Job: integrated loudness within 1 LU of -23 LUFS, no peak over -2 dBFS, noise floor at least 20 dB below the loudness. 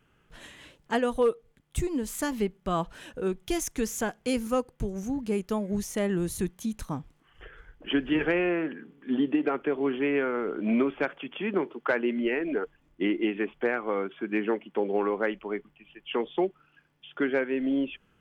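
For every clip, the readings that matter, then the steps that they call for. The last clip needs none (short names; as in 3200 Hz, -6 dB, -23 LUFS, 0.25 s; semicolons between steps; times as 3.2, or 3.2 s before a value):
loudness -29.5 LUFS; peak -14.5 dBFS; loudness target -23.0 LUFS
-> gain +6.5 dB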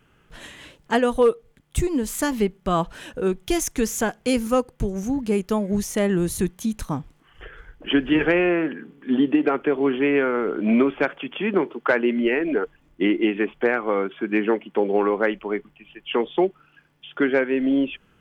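loudness -23.0 LUFS; peak -8.0 dBFS; noise floor -60 dBFS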